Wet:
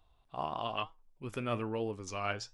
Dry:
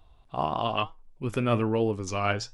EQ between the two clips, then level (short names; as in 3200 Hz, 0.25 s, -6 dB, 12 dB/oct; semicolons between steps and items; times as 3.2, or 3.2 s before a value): low shelf 470 Hz -5 dB; -7.0 dB